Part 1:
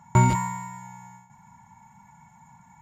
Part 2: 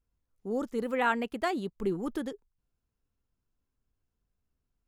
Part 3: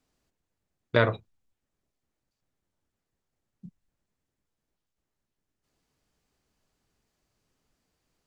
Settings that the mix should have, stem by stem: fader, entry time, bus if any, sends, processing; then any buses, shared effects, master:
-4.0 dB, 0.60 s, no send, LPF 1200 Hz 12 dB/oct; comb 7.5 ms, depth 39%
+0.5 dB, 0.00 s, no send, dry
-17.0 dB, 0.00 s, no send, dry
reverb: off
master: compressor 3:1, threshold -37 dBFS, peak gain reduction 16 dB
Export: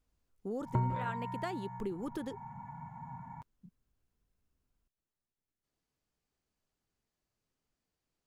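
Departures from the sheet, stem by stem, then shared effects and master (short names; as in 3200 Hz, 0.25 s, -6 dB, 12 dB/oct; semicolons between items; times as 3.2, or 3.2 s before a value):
stem 1 -4.0 dB -> +6.5 dB; stem 3 -17.0 dB -> -10.5 dB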